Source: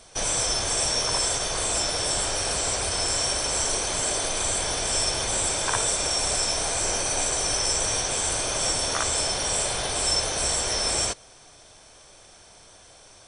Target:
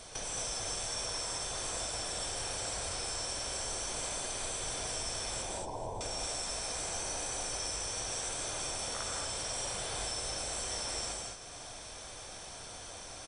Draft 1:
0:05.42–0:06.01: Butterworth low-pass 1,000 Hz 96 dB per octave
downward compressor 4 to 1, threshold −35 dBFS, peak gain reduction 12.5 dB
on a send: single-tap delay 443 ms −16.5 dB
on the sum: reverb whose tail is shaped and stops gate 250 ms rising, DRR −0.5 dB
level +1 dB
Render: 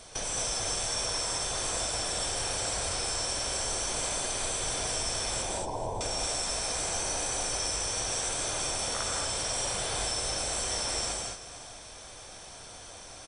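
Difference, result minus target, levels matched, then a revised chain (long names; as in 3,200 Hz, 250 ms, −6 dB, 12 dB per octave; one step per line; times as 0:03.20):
downward compressor: peak gain reduction −5.5 dB
0:05.42–0:06.01: Butterworth low-pass 1,000 Hz 96 dB per octave
downward compressor 4 to 1, threshold −42.5 dBFS, peak gain reduction 18 dB
on a send: single-tap delay 443 ms −16.5 dB
on the sum: reverb whose tail is shaped and stops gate 250 ms rising, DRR −0.5 dB
level +1 dB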